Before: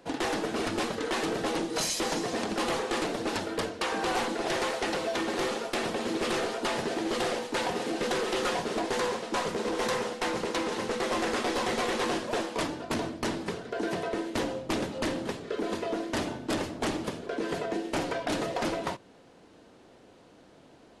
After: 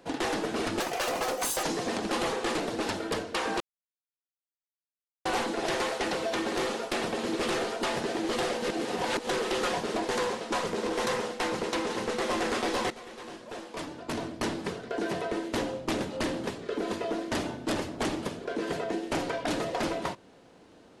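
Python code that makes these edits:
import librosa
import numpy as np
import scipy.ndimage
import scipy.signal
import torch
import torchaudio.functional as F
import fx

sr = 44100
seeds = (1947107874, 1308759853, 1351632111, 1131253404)

y = fx.edit(x, sr, fx.speed_span(start_s=0.8, length_s=1.3, speed=1.56),
    fx.insert_silence(at_s=4.07, length_s=1.65),
    fx.reverse_span(start_s=7.44, length_s=0.65),
    fx.fade_in_from(start_s=11.72, length_s=1.51, curve='qua', floor_db=-16.0), tone=tone)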